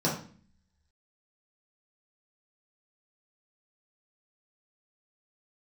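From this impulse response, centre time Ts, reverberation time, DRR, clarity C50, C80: 31 ms, 0.45 s, -6.0 dB, 5.5 dB, 10.5 dB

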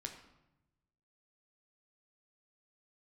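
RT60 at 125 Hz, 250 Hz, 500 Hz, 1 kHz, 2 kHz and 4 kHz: 1.6 s, 1.2 s, 0.95 s, 0.90 s, 0.75 s, 0.65 s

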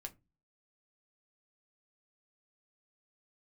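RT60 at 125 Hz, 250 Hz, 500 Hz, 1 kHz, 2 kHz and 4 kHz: 0.50 s, 0.45 s, 0.25 s, 0.20 s, 0.20 s, 0.15 s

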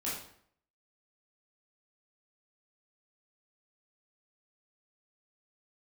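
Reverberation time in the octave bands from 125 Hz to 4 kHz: 0.65 s, 0.65 s, 0.65 s, 0.60 s, 0.55 s, 0.50 s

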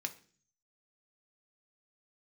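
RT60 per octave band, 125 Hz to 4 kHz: 0.80 s, 0.65 s, 0.50 s, 0.40 s, 0.45 s, 0.50 s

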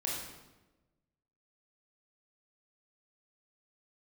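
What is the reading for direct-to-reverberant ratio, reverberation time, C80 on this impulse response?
-4.0 dB, 1.1 s, 3.5 dB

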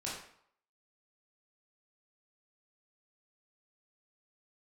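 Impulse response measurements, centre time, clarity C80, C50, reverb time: 49 ms, 6.0 dB, 2.5 dB, 0.65 s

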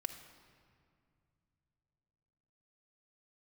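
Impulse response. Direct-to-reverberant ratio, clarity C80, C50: 5.5 dB, 10.0 dB, 8.5 dB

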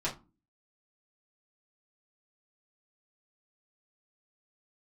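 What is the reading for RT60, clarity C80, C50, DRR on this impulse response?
0.30 s, 20.0 dB, 12.5 dB, -7.5 dB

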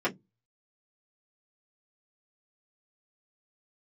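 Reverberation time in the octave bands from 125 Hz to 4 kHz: 0.35 s, 0.25 s, 0.15 s, 0.10 s, 0.10 s, 0.10 s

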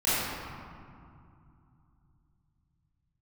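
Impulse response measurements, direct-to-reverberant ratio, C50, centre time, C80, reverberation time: -14.5 dB, -5.5 dB, 162 ms, -2.5 dB, 2.5 s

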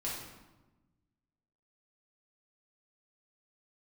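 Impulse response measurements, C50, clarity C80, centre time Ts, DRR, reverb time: 1.0 dB, 4.0 dB, 64 ms, -6.5 dB, 1.1 s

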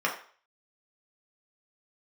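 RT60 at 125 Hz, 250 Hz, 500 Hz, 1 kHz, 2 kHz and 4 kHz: 0.25 s, 0.35 s, 0.45 s, 0.45 s, 0.45 s, 0.45 s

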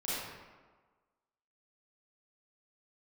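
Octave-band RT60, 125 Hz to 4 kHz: 1.2 s, 1.3 s, 1.4 s, 1.4 s, 1.1 s, 0.80 s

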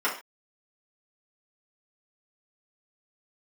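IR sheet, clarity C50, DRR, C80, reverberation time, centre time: 8.0 dB, -7.0 dB, 13.5 dB, no single decay rate, 23 ms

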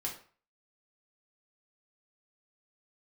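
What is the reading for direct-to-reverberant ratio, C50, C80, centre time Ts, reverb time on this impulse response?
-2.5 dB, 8.0 dB, 13.0 dB, 21 ms, 0.45 s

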